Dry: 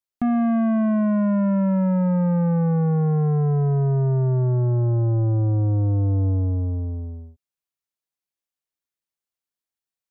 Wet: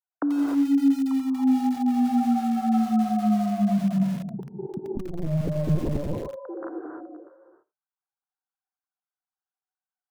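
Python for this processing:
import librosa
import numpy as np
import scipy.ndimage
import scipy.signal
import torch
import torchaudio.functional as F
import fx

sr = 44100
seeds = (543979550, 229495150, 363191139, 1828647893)

p1 = fx.sine_speech(x, sr)
p2 = scipy.signal.sosfilt(scipy.signal.ellip(4, 1.0, 40, 1500.0, 'lowpass', fs=sr, output='sos'), p1)
p3 = fx.low_shelf(p2, sr, hz=270.0, db=-10.5)
p4 = fx.notch(p3, sr, hz=860.0, q=12.0)
p5 = p4 + fx.echo_single(p4, sr, ms=86, db=-21.0, dry=0)
p6 = fx.rev_gated(p5, sr, seeds[0], gate_ms=330, shape='rising', drr_db=0.5)
p7 = fx.lpc_vocoder(p6, sr, seeds[1], excitation='pitch_kept', order=10, at=(4.95, 6.28))
y = fx.echo_crushed(p7, sr, ms=85, feedback_pct=35, bits=5, wet_db=-12.5)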